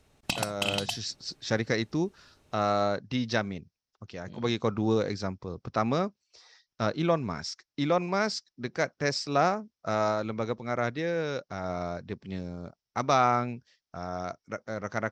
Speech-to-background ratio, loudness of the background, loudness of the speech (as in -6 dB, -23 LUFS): 2.0 dB, -32.5 LUFS, -30.5 LUFS